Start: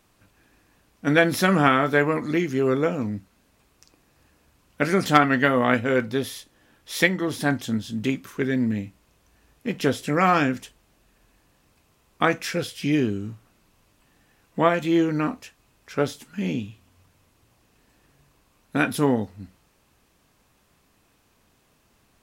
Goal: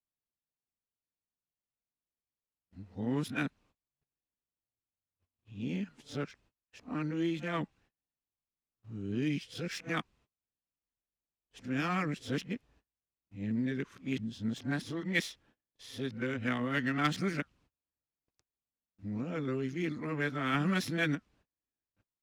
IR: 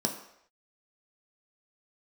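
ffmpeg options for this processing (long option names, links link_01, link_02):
-filter_complex "[0:a]areverse,acrossover=split=330|1100|1900[link_01][link_02][link_03][link_04];[link_02]acompressor=threshold=-37dB:ratio=5[link_05];[link_03]flanger=delay=4.1:depth=7:regen=-68:speed=1.1:shape=triangular[link_06];[link_01][link_05][link_06][link_04]amix=inputs=4:normalize=0,adynamicsmooth=sensitivity=5.5:basefreq=5300,agate=range=-31dB:threshold=-55dB:ratio=16:detection=peak,volume=-8.5dB"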